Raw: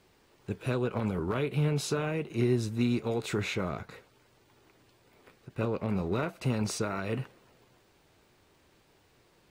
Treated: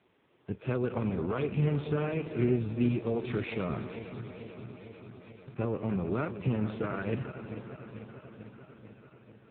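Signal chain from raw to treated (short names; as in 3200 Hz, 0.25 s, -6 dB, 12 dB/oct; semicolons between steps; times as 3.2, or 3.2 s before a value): regenerating reverse delay 0.222 s, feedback 82%, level -11 dB; AMR-NB 5.9 kbps 8000 Hz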